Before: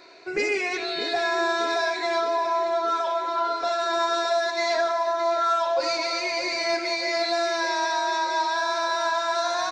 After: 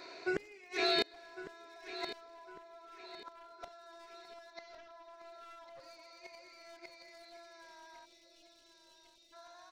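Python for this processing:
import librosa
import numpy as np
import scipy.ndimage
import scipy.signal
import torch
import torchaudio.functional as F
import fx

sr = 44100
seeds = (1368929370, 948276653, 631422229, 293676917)

p1 = np.minimum(x, 2.0 * 10.0 ** (-21.0 / 20.0) - x)
p2 = fx.steep_lowpass(p1, sr, hz=6000.0, slope=36, at=(4.53, 5.14))
p3 = fx.gate_flip(p2, sr, shuts_db=-19.0, range_db=-29)
p4 = fx.spec_erase(p3, sr, start_s=8.05, length_s=1.28, low_hz=630.0, high_hz=2500.0)
p5 = p4 + fx.echo_feedback(p4, sr, ms=1104, feedback_pct=37, wet_db=-13.0, dry=0)
y = p5 * 10.0 ** (-1.0 / 20.0)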